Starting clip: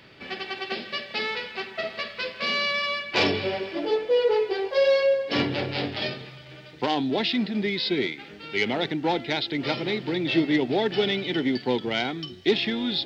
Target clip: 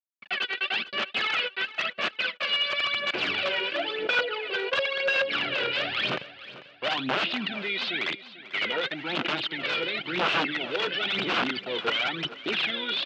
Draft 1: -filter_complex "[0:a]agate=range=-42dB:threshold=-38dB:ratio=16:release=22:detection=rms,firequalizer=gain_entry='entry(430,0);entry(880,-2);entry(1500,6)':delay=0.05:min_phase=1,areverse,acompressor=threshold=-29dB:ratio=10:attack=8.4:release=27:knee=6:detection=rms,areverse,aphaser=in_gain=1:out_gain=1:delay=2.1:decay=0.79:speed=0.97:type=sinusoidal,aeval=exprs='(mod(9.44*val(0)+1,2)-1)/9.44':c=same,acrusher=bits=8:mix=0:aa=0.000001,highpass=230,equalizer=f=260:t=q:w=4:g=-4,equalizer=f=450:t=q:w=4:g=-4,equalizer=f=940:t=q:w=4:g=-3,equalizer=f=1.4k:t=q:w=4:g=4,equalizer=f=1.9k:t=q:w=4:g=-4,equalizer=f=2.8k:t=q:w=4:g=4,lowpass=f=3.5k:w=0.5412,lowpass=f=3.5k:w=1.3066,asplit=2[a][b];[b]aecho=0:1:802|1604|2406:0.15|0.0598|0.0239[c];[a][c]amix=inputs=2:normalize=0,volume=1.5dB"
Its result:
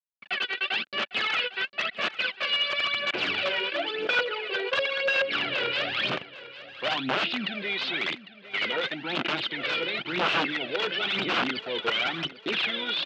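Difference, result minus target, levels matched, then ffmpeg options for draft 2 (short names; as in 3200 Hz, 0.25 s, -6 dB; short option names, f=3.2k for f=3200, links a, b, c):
echo 0.358 s late
-filter_complex "[0:a]agate=range=-42dB:threshold=-38dB:ratio=16:release=22:detection=rms,firequalizer=gain_entry='entry(430,0);entry(880,-2);entry(1500,6)':delay=0.05:min_phase=1,areverse,acompressor=threshold=-29dB:ratio=10:attack=8.4:release=27:knee=6:detection=rms,areverse,aphaser=in_gain=1:out_gain=1:delay=2.1:decay=0.79:speed=0.97:type=sinusoidal,aeval=exprs='(mod(9.44*val(0)+1,2)-1)/9.44':c=same,acrusher=bits=8:mix=0:aa=0.000001,highpass=230,equalizer=f=260:t=q:w=4:g=-4,equalizer=f=450:t=q:w=4:g=-4,equalizer=f=940:t=q:w=4:g=-3,equalizer=f=1.4k:t=q:w=4:g=4,equalizer=f=1.9k:t=q:w=4:g=-4,equalizer=f=2.8k:t=q:w=4:g=4,lowpass=f=3.5k:w=0.5412,lowpass=f=3.5k:w=1.3066,asplit=2[a][b];[b]aecho=0:1:444|888|1332:0.15|0.0598|0.0239[c];[a][c]amix=inputs=2:normalize=0,volume=1.5dB"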